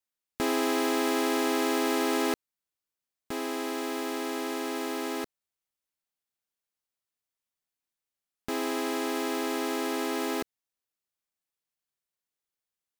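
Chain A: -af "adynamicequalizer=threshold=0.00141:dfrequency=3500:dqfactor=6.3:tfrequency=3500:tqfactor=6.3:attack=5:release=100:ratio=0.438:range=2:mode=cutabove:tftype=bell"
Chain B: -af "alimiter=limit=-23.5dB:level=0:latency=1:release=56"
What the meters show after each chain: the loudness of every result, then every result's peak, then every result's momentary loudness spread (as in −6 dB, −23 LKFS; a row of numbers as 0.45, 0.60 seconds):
−30.0, −32.5 LKFS; −17.0, −23.5 dBFS; 9, 6 LU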